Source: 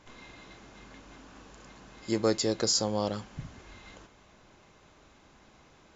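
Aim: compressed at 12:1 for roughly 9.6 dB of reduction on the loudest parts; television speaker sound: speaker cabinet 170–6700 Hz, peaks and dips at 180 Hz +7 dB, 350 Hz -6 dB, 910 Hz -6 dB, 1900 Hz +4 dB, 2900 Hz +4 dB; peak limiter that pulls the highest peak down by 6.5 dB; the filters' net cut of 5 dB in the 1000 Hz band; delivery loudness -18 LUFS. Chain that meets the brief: bell 1000 Hz -4 dB; compressor 12:1, threshold -32 dBFS; limiter -29.5 dBFS; speaker cabinet 170–6700 Hz, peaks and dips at 180 Hz +7 dB, 350 Hz -6 dB, 910 Hz -6 dB, 1900 Hz +4 dB, 2900 Hz +4 dB; gain +27 dB

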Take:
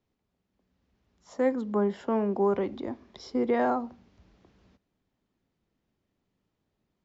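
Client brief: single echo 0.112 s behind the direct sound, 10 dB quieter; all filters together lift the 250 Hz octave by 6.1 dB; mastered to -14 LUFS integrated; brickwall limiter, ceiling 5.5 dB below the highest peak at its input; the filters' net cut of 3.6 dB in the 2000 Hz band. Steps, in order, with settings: bell 250 Hz +7 dB; bell 2000 Hz -4.5 dB; limiter -17.5 dBFS; echo 0.112 s -10 dB; gain +13 dB

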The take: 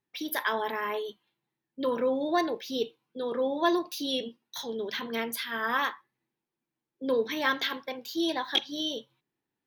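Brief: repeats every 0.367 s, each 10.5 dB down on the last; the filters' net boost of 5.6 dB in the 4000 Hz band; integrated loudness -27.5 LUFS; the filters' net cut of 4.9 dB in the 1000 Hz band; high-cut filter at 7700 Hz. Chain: LPF 7700 Hz; bell 1000 Hz -6.5 dB; bell 4000 Hz +7.5 dB; feedback echo 0.367 s, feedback 30%, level -10.5 dB; gain +2 dB

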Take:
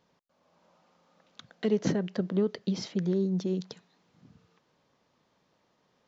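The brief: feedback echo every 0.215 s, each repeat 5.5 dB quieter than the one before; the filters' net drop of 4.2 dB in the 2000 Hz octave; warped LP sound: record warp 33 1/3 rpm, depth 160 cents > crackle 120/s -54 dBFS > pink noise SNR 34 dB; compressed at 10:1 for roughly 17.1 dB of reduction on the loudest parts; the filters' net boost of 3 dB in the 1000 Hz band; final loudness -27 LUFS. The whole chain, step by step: bell 1000 Hz +5.5 dB; bell 2000 Hz -7 dB; compressor 10:1, threshold -39 dBFS; feedback echo 0.215 s, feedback 53%, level -5.5 dB; record warp 33 1/3 rpm, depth 160 cents; crackle 120/s -54 dBFS; pink noise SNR 34 dB; gain +16.5 dB

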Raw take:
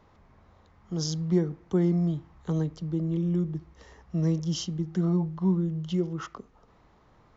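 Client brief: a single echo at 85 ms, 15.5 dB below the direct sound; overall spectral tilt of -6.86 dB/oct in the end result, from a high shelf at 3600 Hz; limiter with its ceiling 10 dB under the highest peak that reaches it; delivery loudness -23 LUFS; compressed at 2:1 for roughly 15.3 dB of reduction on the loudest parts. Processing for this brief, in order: high shelf 3600 Hz -5.5 dB; compressor 2:1, threshold -49 dBFS; limiter -38.5 dBFS; echo 85 ms -15.5 dB; gain +23.5 dB

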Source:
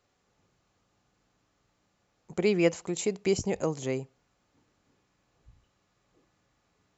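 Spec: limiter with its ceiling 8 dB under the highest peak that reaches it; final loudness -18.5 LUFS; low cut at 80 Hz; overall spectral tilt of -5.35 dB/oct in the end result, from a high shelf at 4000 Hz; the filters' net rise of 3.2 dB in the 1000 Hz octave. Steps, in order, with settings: HPF 80 Hz; bell 1000 Hz +4.5 dB; high shelf 4000 Hz -3.5 dB; gain +12.5 dB; limiter -5 dBFS

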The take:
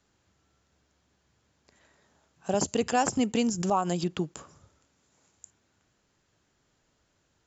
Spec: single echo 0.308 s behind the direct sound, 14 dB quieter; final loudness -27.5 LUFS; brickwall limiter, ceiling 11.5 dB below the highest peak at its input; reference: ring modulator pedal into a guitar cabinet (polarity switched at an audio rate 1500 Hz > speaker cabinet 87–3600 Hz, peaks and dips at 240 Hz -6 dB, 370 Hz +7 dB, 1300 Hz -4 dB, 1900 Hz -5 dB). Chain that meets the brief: limiter -24.5 dBFS; echo 0.308 s -14 dB; polarity switched at an audio rate 1500 Hz; speaker cabinet 87–3600 Hz, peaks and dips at 240 Hz -6 dB, 370 Hz +7 dB, 1300 Hz -4 dB, 1900 Hz -5 dB; gain +9.5 dB

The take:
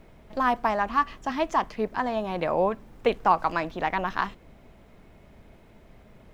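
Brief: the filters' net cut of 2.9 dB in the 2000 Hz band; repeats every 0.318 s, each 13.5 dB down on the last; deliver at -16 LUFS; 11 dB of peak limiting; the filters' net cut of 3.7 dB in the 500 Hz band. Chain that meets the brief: bell 500 Hz -4.5 dB; bell 2000 Hz -3.5 dB; limiter -20.5 dBFS; feedback echo 0.318 s, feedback 21%, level -13.5 dB; gain +16.5 dB

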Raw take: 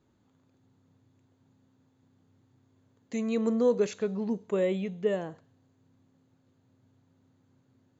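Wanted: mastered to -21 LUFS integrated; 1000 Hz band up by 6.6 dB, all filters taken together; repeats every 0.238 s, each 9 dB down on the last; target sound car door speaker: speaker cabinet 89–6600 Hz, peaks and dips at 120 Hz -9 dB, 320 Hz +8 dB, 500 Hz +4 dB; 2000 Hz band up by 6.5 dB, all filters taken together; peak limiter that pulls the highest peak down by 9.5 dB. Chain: bell 1000 Hz +6.5 dB; bell 2000 Hz +6 dB; limiter -23 dBFS; speaker cabinet 89–6600 Hz, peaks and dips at 120 Hz -9 dB, 320 Hz +8 dB, 500 Hz +4 dB; feedback echo 0.238 s, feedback 35%, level -9 dB; gain +9.5 dB

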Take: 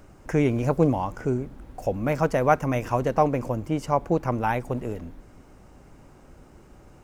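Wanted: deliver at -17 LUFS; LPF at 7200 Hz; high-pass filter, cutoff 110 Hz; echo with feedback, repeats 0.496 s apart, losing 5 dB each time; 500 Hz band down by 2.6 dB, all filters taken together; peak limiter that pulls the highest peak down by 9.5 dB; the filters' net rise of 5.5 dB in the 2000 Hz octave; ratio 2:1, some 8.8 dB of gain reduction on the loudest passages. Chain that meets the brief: HPF 110 Hz; LPF 7200 Hz; bell 500 Hz -3.5 dB; bell 2000 Hz +7.5 dB; compressor 2:1, threshold -31 dBFS; limiter -22.5 dBFS; feedback echo 0.496 s, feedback 56%, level -5 dB; gain +17.5 dB

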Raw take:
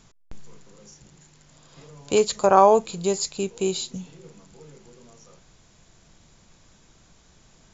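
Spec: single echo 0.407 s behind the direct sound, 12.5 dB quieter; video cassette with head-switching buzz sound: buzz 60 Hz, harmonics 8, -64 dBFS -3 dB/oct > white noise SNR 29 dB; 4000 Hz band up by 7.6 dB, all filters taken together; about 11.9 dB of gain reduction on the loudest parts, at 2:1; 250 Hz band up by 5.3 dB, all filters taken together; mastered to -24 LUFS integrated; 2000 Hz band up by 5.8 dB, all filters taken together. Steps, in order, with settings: bell 250 Hz +8 dB; bell 2000 Hz +5.5 dB; bell 4000 Hz +7.5 dB; compressor 2:1, threshold -31 dBFS; echo 0.407 s -12.5 dB; buzz 60 Hz, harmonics 8, -64 dBFS -3 dB/oct; white noise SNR 29 dB; gain +5 dB

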